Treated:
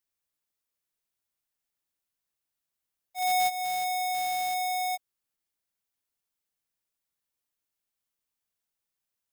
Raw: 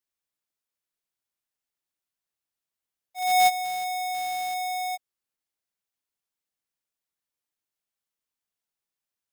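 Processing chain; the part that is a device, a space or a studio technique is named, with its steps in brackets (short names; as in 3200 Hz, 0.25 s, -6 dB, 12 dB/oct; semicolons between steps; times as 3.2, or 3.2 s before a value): ASMR close-microphone chain (low shelf 120 Hz +5 dB; compressor 4:1, threshold -26 dBFS, peak gain reduction 8 dB; high shelf 10000 Hz +4.5 dB)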